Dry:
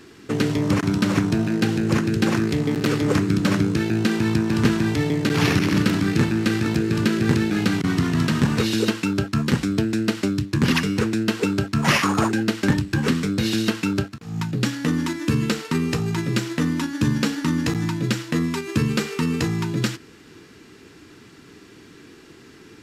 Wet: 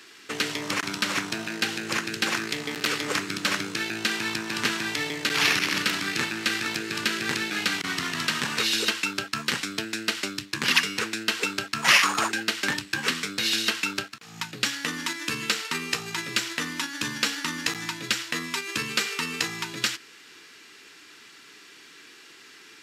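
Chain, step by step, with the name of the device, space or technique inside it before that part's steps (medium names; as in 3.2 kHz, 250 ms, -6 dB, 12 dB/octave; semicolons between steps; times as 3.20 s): filter by subtraction (in parallel: low-pass 2.6 kHz 12 dB/octave + polarity flip); on the sum: trim +2.5 dB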